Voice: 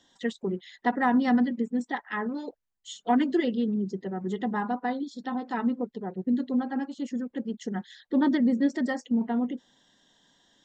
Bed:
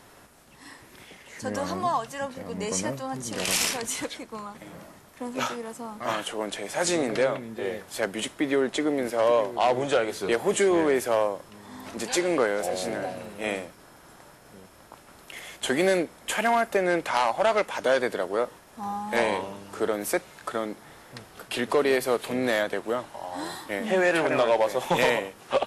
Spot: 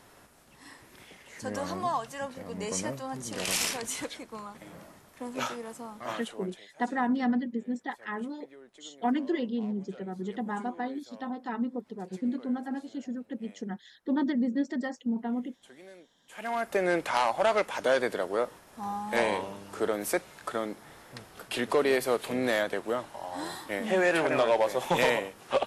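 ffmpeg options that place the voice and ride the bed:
-filter_complex "[0:a]adelay=5950,volume=0.596[s0];[1:a]volume=11.9,afade=t=out:st=5.78:d=0.91:silence=0.0630957,afade=t=in:st=16.29:d=0.55:silence=0.0530884[s1];[s0][s1]amix=inputs=2:normalize=0"

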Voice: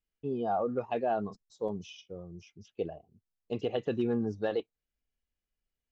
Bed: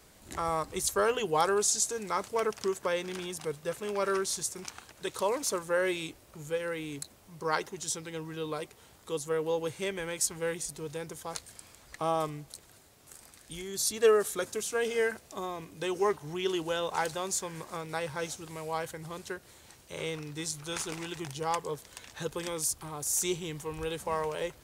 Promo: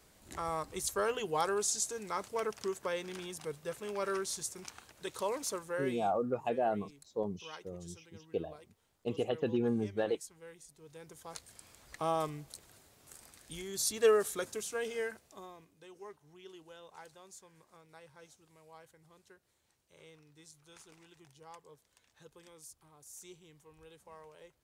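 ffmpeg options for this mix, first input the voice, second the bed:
-filter_complex "[0:a]adelay=5550,volume=0.841[s0];[1:a]volume=3.35,afade=t=out:st=5.44:d=0.82:silence=0.211349,afade=t=in:st=10.77:d=1.16:silence=0.158489,afade=t=out:st=14.19:d=1.61:silence=0.11885[s1];[s0][s1]amix=inputs=2:normalize=0"

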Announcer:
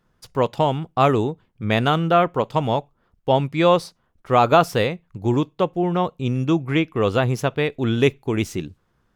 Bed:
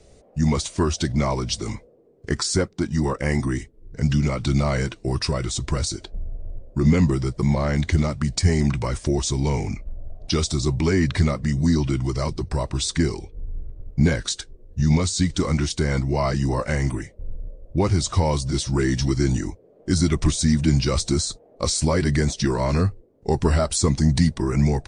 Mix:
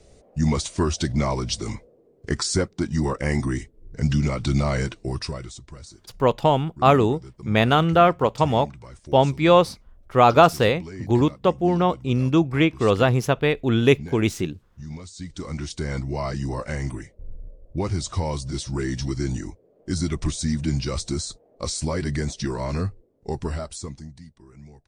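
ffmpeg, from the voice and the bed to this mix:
-filter_complex "[0:a]adelay=5850,volume=1.12[s0];[1:a]volume=3.76,afade=t=out:st=4.85:d=0.78:silence=0.141254,afade=t=in:st=15.13:d=0.78:silence=0.237137,afade=t=out:st=23.11:d=1.03:silence=0.0891251[s1];[s0][s1]amix=inputs=2:normalize=0"

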